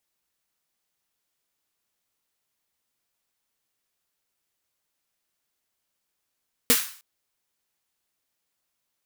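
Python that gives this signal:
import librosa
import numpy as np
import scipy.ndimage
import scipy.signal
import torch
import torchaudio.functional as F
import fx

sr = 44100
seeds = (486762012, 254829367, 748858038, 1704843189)

y = fx.drum_snare(sr, seeds[0], length_s=0.31, hz=250.0, second_hz=470.0, noise_db=4, noise_from_hz=1100.0, decay_s=0.12, noise_decay_s=0.46)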